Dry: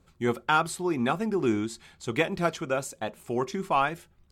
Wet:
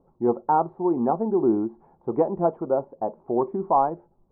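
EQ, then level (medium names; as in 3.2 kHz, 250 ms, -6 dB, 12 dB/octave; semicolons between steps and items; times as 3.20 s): Chebyshev low-pass 930 Hz, order 4; peaking EQ 69 Hz -10.5 dB 2.3 oct; bass shelf 160 Hz -6.5 dB; +8.0 dB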